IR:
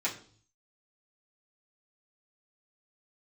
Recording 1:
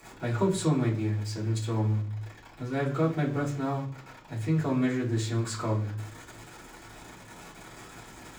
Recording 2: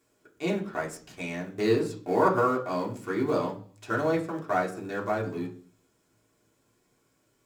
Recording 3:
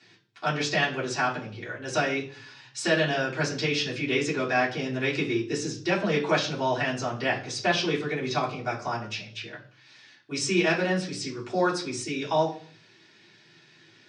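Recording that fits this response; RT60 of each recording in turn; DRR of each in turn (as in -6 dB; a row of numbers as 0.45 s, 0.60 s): 3; 0.50 s, 0.50 s, 0.50 s; -14.0 dB, -3.0 dB, -8.5 dB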